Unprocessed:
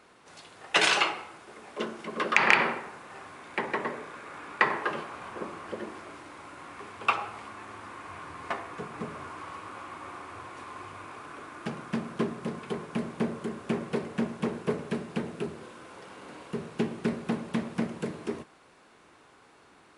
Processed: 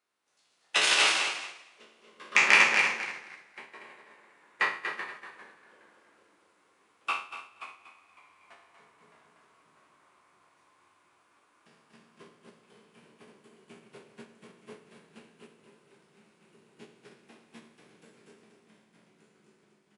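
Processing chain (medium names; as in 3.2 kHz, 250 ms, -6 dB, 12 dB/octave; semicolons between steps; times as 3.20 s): spectral sustain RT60 1.05 s; bass shelf 180 Hz -8.5 dB; flange 0.27 Hz, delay 2.8 ms, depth 4.5 ms, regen -81%; treble shelf 2.5 kHz +10 dB; ever faster or slower copies 109 ms, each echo -1 st, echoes 3, each echo -6 dB; feedback delay 239 ms, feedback 35%, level -4.5 dB; upward expansion 2.5:1, over -32 dBFS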